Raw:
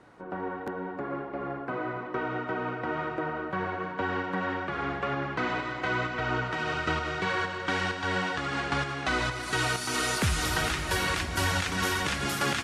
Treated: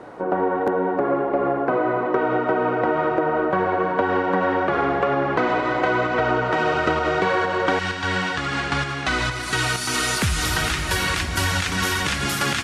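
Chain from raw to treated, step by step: bell 550 Hz +11 dB 2.2 oct, from 7.79 s -4 dB; compressor, threshold -25 dBFS, peak gain reduction 7.5 dB; gain +8 dB

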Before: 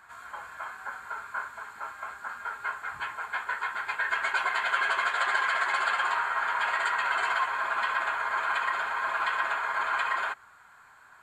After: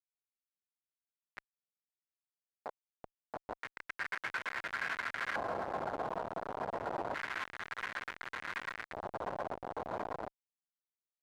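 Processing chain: high shelf 3900 Hz +6 dB; Schmitt trigger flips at -22.5 dBFS; LFO band-pass square 0.28 Hz 700–1900 Hz; gain +3 dB

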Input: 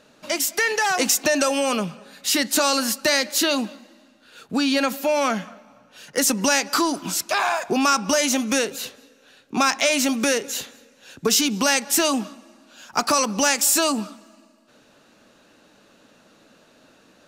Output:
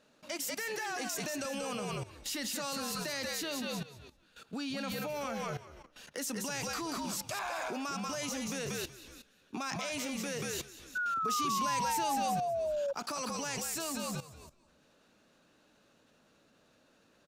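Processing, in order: frequency-shifting echo 0.186 s, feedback 31%, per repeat -70 Hz, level -5.5 dB; level quantiser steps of 15 dB; painted sound fall, 10.95–12.93, 550–1500 Hz -26 dBFS; gain -7 dB

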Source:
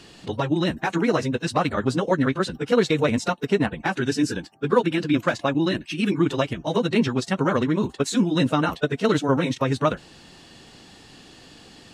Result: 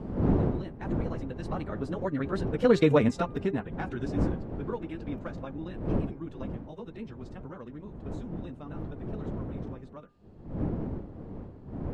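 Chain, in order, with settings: Doppler pass-by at 2.88, 10 m/s, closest 2 m; wind noise 270 Hz -37 dBFS; high shelf 2200 Hz -12 dB; in parallel at +0.5 dB: compressor, threshold -39 dBFS, peak gain reduction 20.5 dB; on the sum: de-hum 401.2 Hz, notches 6

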